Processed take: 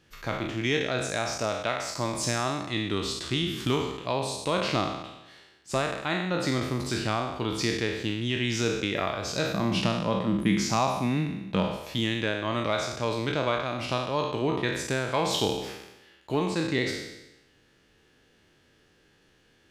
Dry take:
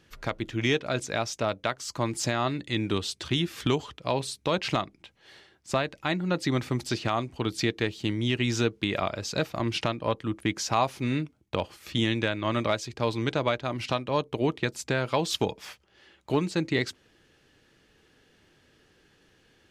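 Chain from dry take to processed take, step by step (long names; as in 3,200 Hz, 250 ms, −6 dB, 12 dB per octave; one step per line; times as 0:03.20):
peak hold with a decay on every bin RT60 0.97 s
0:09.53–0:11.77: parametric band 190 Hz +14.5 dB 0.47 octaves
level −3 dB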